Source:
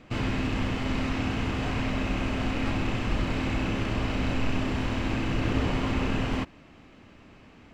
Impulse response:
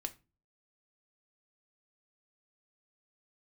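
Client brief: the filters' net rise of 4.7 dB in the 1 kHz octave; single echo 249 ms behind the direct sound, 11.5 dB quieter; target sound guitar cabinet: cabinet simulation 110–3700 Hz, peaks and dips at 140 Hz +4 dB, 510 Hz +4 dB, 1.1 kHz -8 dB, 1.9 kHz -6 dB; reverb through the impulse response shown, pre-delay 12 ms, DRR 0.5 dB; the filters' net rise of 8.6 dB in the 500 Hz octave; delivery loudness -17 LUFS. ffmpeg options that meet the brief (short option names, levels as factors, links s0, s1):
-filter_complex "[0:a]equalizer=f=500:t=o:g=6.5,equalizer=f=1000:t=o:g=7.5,aecho=1:1:249:0.266,asplit=2[s0][s1];[1:a]atrim=start_sample=2205,adelay=12[s2];[s1][s2]afir=irnorm=-1:irlink=0,volume=1.12[s3];[s0][s3]amix=inputs=2:normalize=0,highpass=110,equalizer=f=140:t=q:w=4:g=4,equalizer=f=510:t=q:w=4:g=4,equalizer=f=1100:t=q:w=4:g=-8,equalizer=f=1900:t=q:w=4:g=-6,lowpass=f=3700:w=0.5412,lowpass=f=3700:w=1.3066,volume=1.78"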